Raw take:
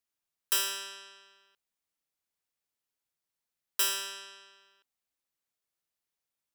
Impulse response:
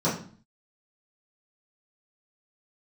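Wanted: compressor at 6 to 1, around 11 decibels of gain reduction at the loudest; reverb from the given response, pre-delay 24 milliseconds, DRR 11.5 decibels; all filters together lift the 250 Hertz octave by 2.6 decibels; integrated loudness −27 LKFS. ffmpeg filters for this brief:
-filter_complex "[0:a]equalizer=frequency=250:width_type=o:gain=6,acompressor=threshold=-35dB:ratio=6,asplit=2[link_01][link_02];[1:a]atrim=start_sample=2205,adelay=24[link_03];[link_02][link_03]afir=irnorm=-1:irlink=0,volume=-24.5dB[link_04];[link_01][link_04]amix=inputs=2:normalize=0,volume=12.5dB"

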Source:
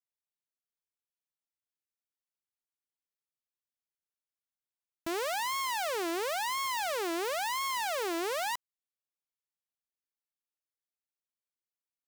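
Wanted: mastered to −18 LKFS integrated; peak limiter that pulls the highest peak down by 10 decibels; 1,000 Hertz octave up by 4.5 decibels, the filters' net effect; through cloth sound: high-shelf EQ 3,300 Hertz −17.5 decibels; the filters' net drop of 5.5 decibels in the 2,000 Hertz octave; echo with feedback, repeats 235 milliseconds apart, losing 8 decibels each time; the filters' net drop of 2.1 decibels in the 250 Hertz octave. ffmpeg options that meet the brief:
ffmpeg -i in.wav -af "equalizer=frequency=250:width_type=o:gain=-4.5,equalizer=frequency=1000:width_type=o:gain=8,equalizer=frequency=2000:width_type=o:gain=-4,alimiter=level_in=10dB:limit=-24dB:level=0:latency=1,volume=-10dB,highshelf=frequency=3300:gain=-17.5,aecho=1:1:235|470|705|940|1175:0.398|0.159|0.0637|0.0255|0.0102,volume=22dB" out.wav

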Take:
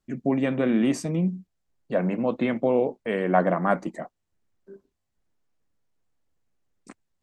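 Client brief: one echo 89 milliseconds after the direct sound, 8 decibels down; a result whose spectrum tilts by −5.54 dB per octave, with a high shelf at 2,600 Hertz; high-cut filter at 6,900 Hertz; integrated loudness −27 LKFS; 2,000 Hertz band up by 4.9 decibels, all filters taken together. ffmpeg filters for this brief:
ffmpeg -i in.wav -af "lowpass=6900,equalizer=frequency=2000:width_type=o:gain=3.5,highshelf=frequency=2600:gain=6.5,aecho=1:1:89:0.398,volume=-3dB" out.wav

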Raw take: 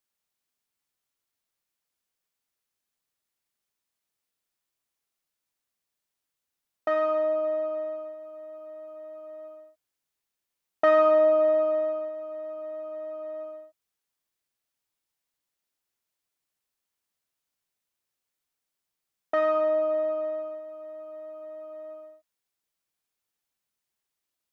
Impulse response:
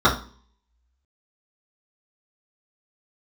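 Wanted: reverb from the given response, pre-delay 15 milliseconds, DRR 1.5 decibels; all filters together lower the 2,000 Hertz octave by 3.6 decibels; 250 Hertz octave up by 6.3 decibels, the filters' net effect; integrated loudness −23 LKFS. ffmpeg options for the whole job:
-filter_complex "[0:a]equalizer=frequency=250:width_type=o:gain=9,equalizer=frequency=2000:width_type=o:gain=-4,asplit=2[link_01][link_02];[1:a]atrim=start_sample=2205,adelay=15[link_03];[link_02][link_03]afir=irnorm=-1:irlink=0,volume=-23.5dB[link_04];[link_01][link_04]amix=inputs=2:normalize=0,volume=-3dB"

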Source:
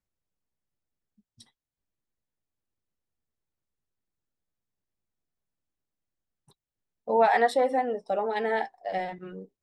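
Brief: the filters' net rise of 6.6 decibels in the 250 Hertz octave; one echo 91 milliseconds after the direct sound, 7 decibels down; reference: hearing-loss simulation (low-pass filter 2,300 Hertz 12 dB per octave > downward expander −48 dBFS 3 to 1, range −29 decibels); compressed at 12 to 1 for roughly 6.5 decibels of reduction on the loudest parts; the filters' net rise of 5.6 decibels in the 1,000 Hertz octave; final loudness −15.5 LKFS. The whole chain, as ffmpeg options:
ffmpeg -i in.wav -af "equalizer=frequency=250:width_type=o:gain=7,equalizer=frequency=1000:width_type=o:gain=7.5,acompressor=threshold=-18dB:ratio=12,lowpass=2300,aecho=1:1:91:0.447,agate=range=-29dB:threshold=-48dB:ratio=3,volume=9.5dB" out.wav

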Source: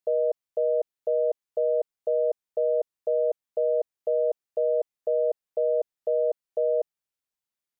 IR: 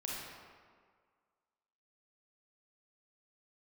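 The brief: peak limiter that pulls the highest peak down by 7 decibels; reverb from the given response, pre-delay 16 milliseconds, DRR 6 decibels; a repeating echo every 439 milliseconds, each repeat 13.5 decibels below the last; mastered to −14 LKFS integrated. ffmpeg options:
-filter_complex "[0:a]alimiter=level_in=0.5dB:limit=-24dB:level=0:latency=1,volume=-0.5dB,aecho=1:1:439|878:0.211|0.0444,asplit=2[link_01][link_02];[1:a]atrim=start_sample=2205,adelay=16[link_03];[link_02][link_03]afir=irnorm=-1:irlink=0,volume=-7.5dB[link_04];[link_01][link_04]amix=inputs=2:normalize=0,volume=19dB"

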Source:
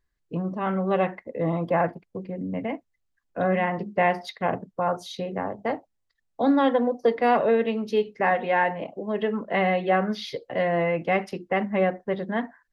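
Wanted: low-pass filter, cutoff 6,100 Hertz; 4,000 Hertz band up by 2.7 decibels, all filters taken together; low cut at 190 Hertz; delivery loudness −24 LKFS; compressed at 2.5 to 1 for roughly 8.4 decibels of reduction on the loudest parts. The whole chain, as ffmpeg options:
ffmpeg -i in.wav -af "highpass=190,lowpass=6100,equalizer=frequency=4000:width_type=o:gain=4,acompressor=threshold=-29dB:ratio=2.5,volume=8dB" out.wav

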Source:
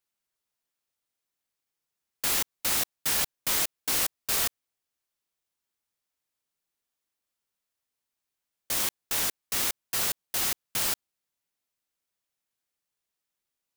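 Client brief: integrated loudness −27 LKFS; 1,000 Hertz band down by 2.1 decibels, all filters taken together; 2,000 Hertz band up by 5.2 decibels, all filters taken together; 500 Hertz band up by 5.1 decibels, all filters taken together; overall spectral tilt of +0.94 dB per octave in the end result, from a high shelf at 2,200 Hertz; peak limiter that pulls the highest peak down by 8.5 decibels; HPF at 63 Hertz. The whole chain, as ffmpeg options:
ffmpeg -i in.wav -af "highpass=63,equalizer=frequency=500:width_type=o:gain=8,equalizer=frequency=1000:width_type=o:gain=-8.5,equalizer=frequency=2000:width_type=o:gain=4.5,highshelf=frequency=2200:gain=6.5,volume=-2dB,alimiter=limit=-17dB:level=0:latency=1" out.wav

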